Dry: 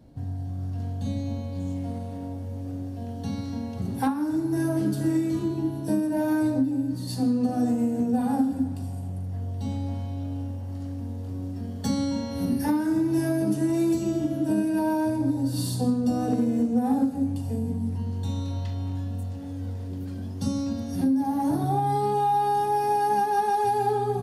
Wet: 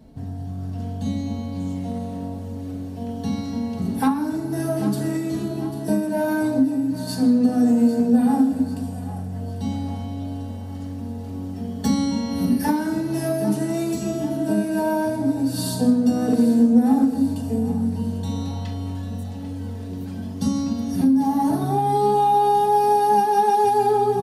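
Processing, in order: comb 4.6 ms, depth 51%; two-band feedback delay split 500 Hz, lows 206 ms, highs 795 ms, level -13.5 dB; trim +4 dB

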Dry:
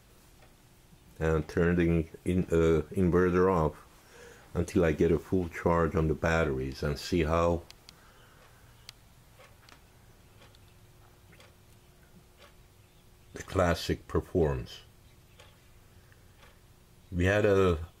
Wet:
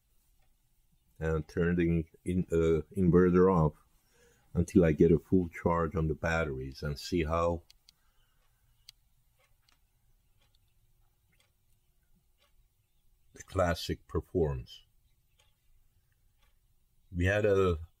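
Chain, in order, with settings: expander on every frequency bin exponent 1.5; 3.08–5.67 s: peaking EQ 180 Hz +7 dB 2.1 oct

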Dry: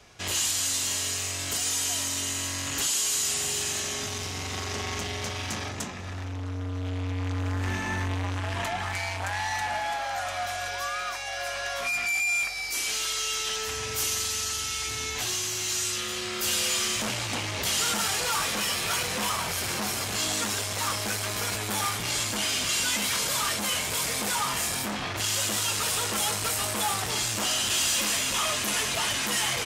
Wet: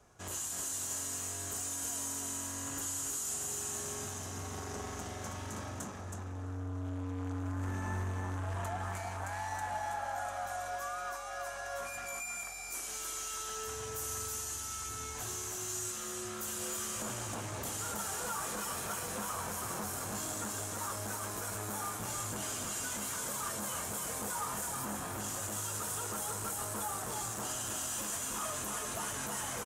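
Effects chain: high-order bell 3.2 kHz -11.5 dB; peak limiter -22 dBFS, peak gain reduction 5 dB; on a send: delay 322 ms -4.5 dB; on the sum: trim -7.5 dB

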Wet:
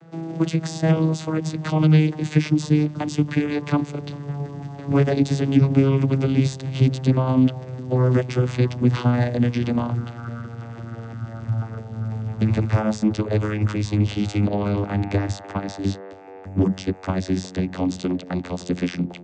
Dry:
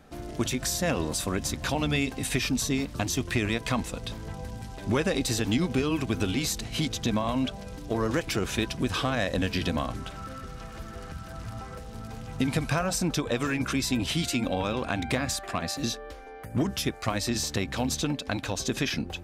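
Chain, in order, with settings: vocoder on a note that slides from E3, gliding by -11 st; trim +9 dB

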